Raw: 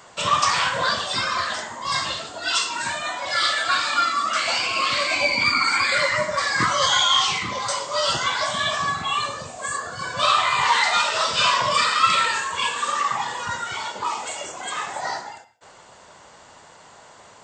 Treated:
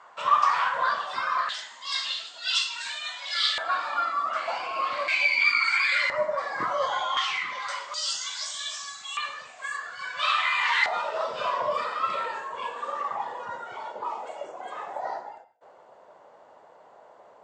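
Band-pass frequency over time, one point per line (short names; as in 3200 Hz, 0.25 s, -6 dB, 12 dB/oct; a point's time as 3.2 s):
band-pass, Q 1.6
1100 Hz
from 1.49 s 3500 Hz
from 3.58 s 810 Hz
from 5.08 s 2400 Hz
from 6.1 s 670 Hz
from 7.17 s 1800 Hz
from 7.94 s 6300 Hz
from 9.17 s 2100 Hz
from 10.86 s 590 Hz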